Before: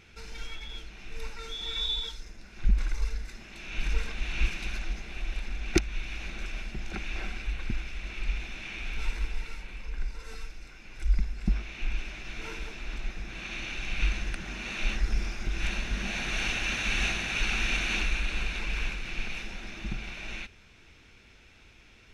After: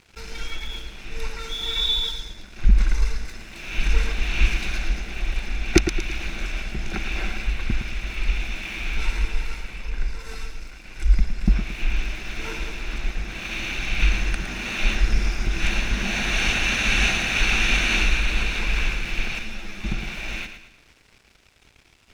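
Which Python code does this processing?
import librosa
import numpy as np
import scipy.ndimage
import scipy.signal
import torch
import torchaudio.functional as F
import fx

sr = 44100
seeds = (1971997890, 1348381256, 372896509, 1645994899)

p1 = np.sign(x) * np.maximum(np.abs(x) - 10.0 ** (-54.0 / 20.0), 0.0)
p2 = p1 + fx.echo_feedback(p1, sr, ms=112, feedback_pct=41, wet_db=-9.0, dry=0)
p3 = fx.ensemble(p2, sr, at=(19.39, 19.84))
y = p3 * 10.0 ** (8.0 / 20.0)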